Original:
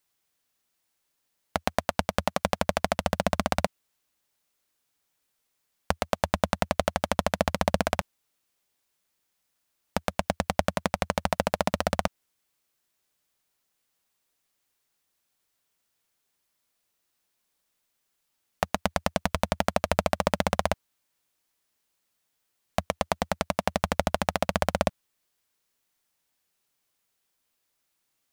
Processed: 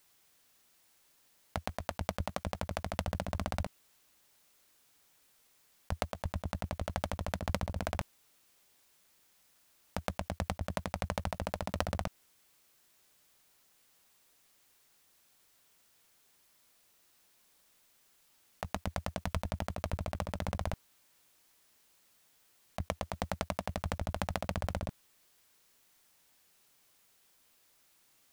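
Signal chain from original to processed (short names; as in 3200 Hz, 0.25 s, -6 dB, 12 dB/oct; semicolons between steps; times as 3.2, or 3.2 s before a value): negative-ratio compressor -31 dBFS, ratio -0.5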